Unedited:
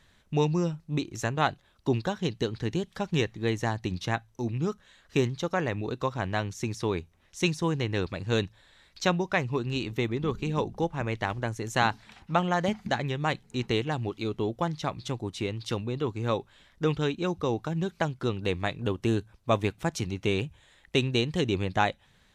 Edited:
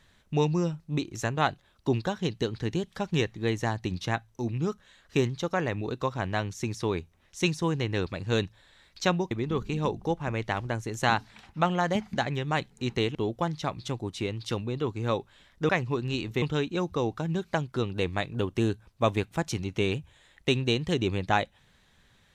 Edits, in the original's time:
9.31–10.04 s: move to 16.89 s
13.88–14.35 s: delete

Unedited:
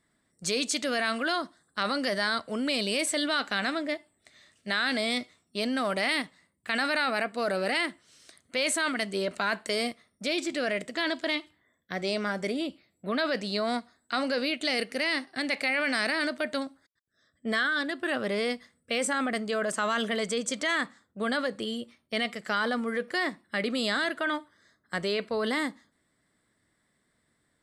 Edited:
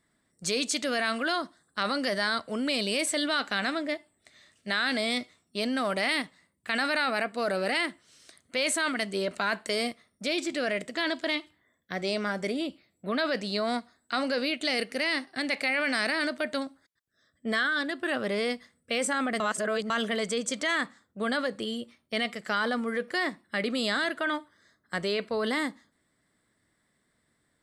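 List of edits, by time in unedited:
19.40–19.90 s: reverse

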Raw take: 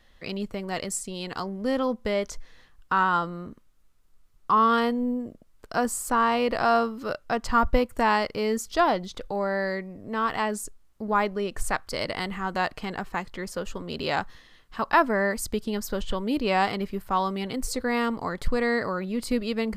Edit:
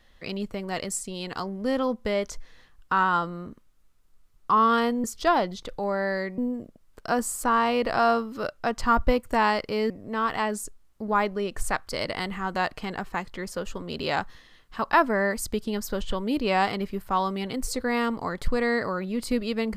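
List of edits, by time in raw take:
8.56–9.90 s: move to 5.04 s

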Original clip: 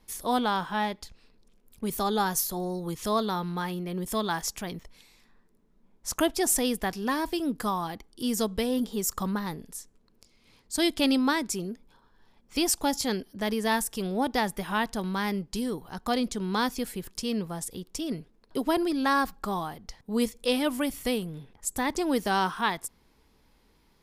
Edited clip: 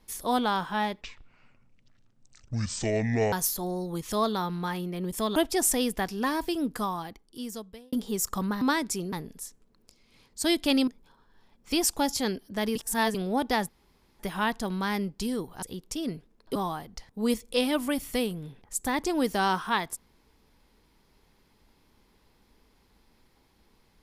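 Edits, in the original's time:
1.01–2.26 s: speed 54%
4.29–6.20 s: delete
7.48–8.77 s: fade out
11.21–11.72 s: move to 9.46 s
13.60–13.99 s: reverse
14.53 s: insert room tone 0.51 s
15.96–17.66 s: delete
18.59–19.47 s: delete

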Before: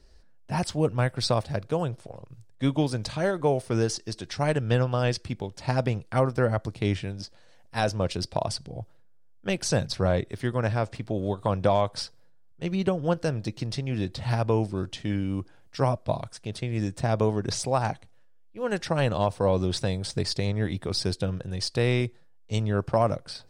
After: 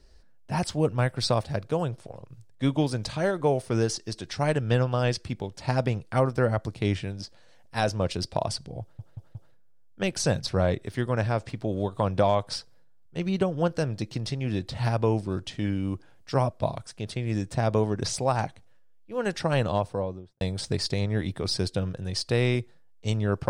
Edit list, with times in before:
8.81 s: stutter 0.18 s, 4 plays
19.07–19.87 s: studio fade out

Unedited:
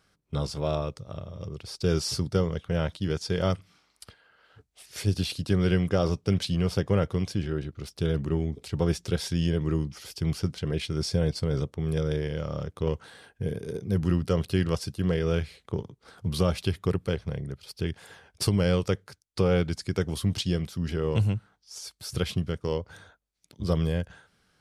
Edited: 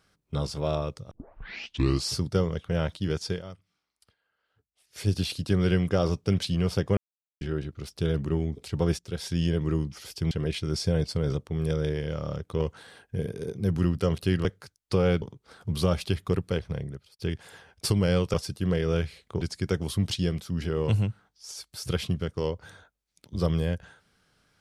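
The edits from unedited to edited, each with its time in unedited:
1.11 s: tape start 0.98 s
3.29–5.05 s: dip -16.5 dB, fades 0.13 s
6.97–7.41 s: mute
8.99–9.38 s: fade in, from -14.5 dB
10.31–10.58 s: delete
14.72–15.79 s: swap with 18.91–19.68 s
17.40–17.76 s: fade out linear

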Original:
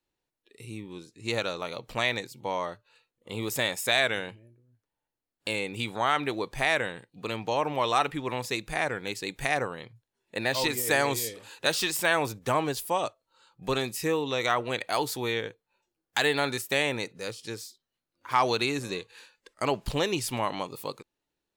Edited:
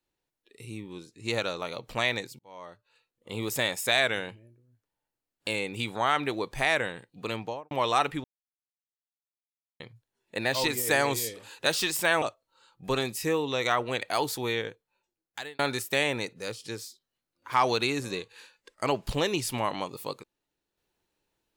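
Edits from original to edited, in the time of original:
2.39–3.35 s: fade in
7.34–7.71 s: studio fade out
8.24–9.80 s: mute
12.22–13.01 s: delete
15.19–16.38 s: fade out equal-power

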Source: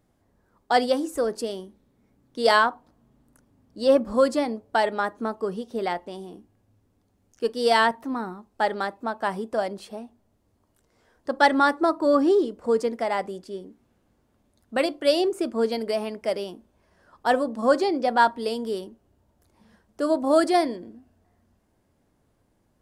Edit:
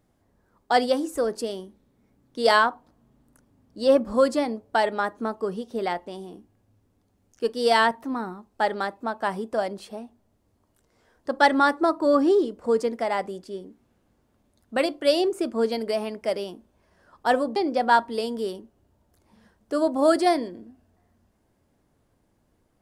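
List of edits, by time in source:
17.56–17.84 s: delete

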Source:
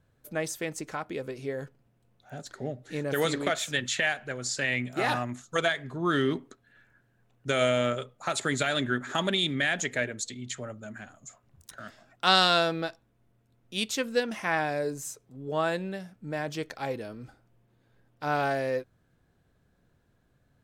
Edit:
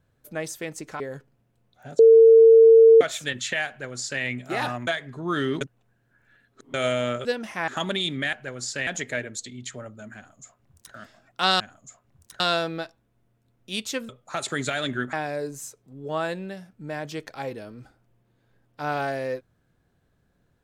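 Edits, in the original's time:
1.00–1.47 s: delete
2.46–3.48 s: bleep 452 Hz -8.5 dBFS
4.16–4.70 s: copy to 9.71 s
5.34–5.64 s: delete
6.38–7.51 s: reverse
8.02–9.06 s: swap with 14.13–14.56 s
10.99–11.79 s: copy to 12.44 s

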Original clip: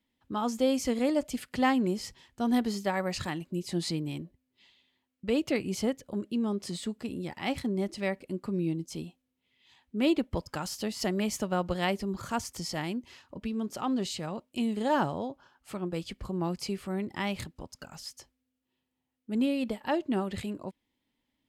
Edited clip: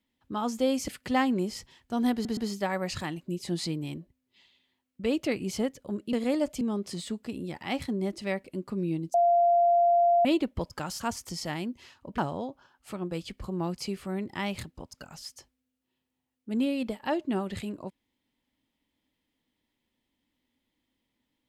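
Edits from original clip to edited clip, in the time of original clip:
0.88–1.36 s: move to 6.37 s
2.61 s: stutter 0.12 s, 3 plays
8.90–10.01 s: bleep 692 Hz -18.5 dBFS
10.76–12.28 s: delete
13.46–14.99 s: delete

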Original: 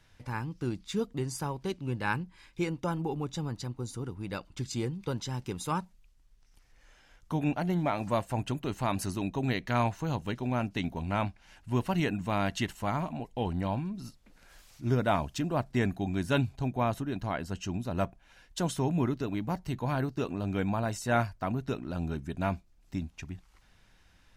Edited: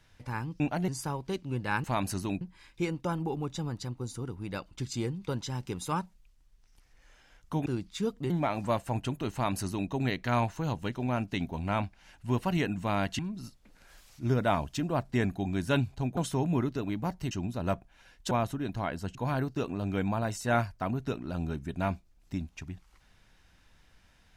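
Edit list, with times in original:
0.60–1.24 s: swap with 7.45–7.73 s
8.76–9.33 s: copy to 2.20 s
12.62–13.80 s: delete
16.78–17.62 s: swap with 18.62–19.76 s

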